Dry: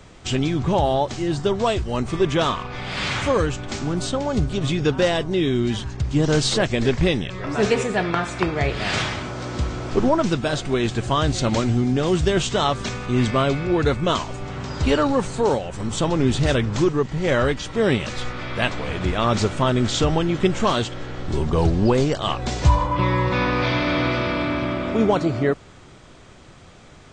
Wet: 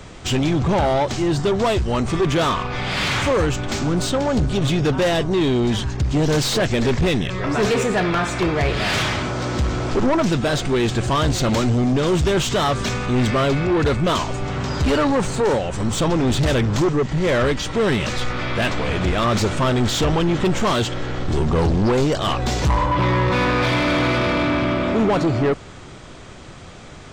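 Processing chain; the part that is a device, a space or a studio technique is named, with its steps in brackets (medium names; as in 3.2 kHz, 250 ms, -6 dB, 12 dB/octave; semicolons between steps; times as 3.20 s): saturation between pre-emphasis and de-emphasis (treble shelf 4 kHz +10 dB; saturation -21 dBFS, distortion -8 dB; treble shelf 4 kHz -10 dB); trim +7 dB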